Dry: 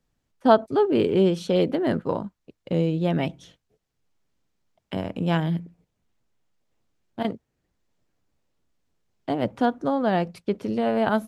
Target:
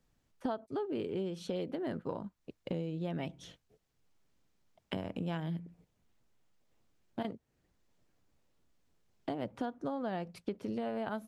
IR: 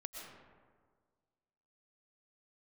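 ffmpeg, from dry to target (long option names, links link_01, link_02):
-af "acompressor=threshold=-35dB:ratio=6"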